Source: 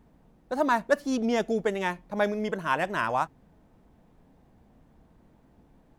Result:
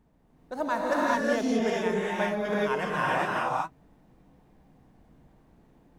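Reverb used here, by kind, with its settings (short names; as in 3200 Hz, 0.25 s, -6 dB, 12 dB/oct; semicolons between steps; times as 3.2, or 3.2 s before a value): non-linear reverb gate 0.44 s rising, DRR -6 dB; gain -6 dB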